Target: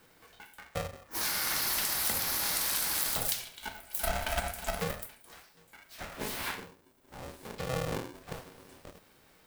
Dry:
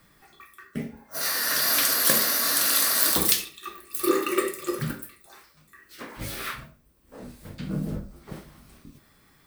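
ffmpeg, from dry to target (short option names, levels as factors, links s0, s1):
-af "acompressor=threshold=0.0501:ratio=4,aeval=exprs='val(0)*sgn(sin(2*PI*320*n/s))':c=same,volume=0.75"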